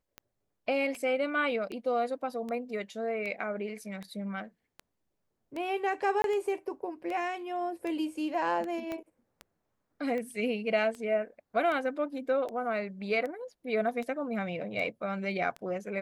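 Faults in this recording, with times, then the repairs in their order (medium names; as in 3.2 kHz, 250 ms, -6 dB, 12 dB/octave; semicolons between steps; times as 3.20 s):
tick 78 rpm -26 dBFS
6.22–6.24 s: dropout 22 ms
8.92 s: pop -23 dBFS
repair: de-click; interpolate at 6.22 s, 22 ms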